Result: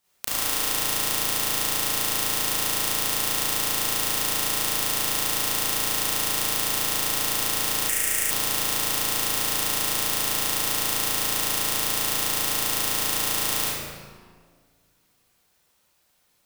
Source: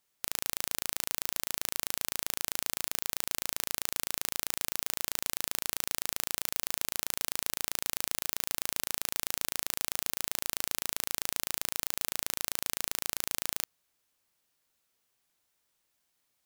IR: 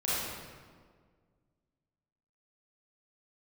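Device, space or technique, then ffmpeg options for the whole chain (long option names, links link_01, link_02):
stairwell: -filter_complex "[1:a]atrim=start_sample=2205[link_01];[0:a][link_01]afir=irnorm=-1:irlink=0,asettb=1/sr,asplit=3[link_02][link_03][link_04];[link_02]atrim=end=7.894[link_05];[link_03]atrim=start=7.89:end=8.31,asetpts=PTS-STARTPTS,afade=type=in:duration=0.004:curve=qsin,afade=type=out:start_time=0.416:duration=0.004:curve=qsin,equalizer=frequency=125:width_type=o:width=1:gain=-7,equalizer=frequency=250:width_type=o:width=1:gain=-5,equalizer=frequency=1000:width_type=o:width=1:gain=-11,equalizer=frequency=2000:width_type=o:width=1:gain=10,equalizer=frequency=4000:width_type=o:width=1:gain=-12,equalizer=frequency=8000:width_type=o:width=1:gain=7[link_06];[link_04]atrim=start=8.306[link_07];[link_05][link_06]acrossfade=duration=0.004:curve1=hsin:curve2=qsin[link_08];[link_08][link_07]acrossfade=duration=0.004:curve1=qsin:curve2=hsin,volume=3.5dB"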